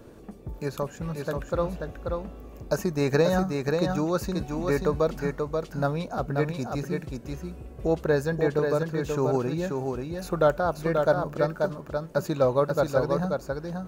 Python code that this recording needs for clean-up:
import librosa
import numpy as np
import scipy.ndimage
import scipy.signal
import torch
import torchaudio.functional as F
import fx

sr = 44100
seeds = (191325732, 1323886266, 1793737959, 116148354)

y = fx.noise_reduce(x, sr, print_start_s=0.0, print_end_s=0.5, reduce_db=29.0)
y = fx.fix_echo_inverse(y, sr, delay_ms=534, level_db=-4.5)